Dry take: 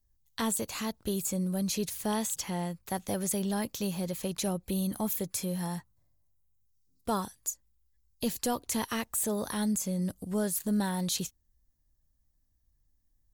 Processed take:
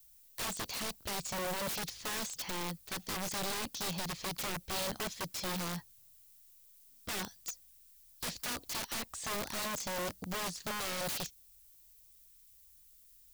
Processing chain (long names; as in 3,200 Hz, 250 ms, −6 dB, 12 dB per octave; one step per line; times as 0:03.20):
transistor ladder low-pass 6,000 Hz, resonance 45%
background noise violet −67 dBFS
wrap-around overflow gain 38 dB
level +6 dB